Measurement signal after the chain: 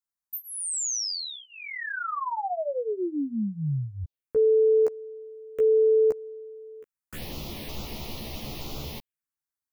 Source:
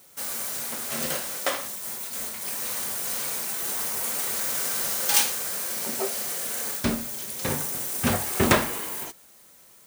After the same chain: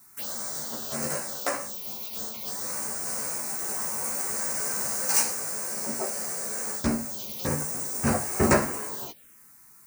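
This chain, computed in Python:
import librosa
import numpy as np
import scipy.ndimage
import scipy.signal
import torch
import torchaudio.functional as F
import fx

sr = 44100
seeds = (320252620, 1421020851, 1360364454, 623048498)

y = fx.env_phaser(x, sr, low_hz=490.0, high_hz=3400.0, full_db=-26.5)
y = fx.doubler(y, sr, ms=14.0, db=-2.0)
y = y * librosa.db_to_amplitude(-1.5)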